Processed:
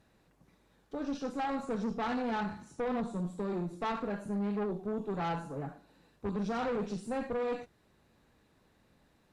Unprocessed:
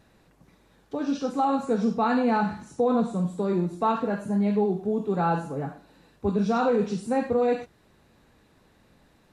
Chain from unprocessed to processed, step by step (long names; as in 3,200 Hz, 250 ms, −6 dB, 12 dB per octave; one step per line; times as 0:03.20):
hard clipping −19.5 dBFS, distortion −17 dB
tube saturation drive 24 dB, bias 0.55
level −5 dB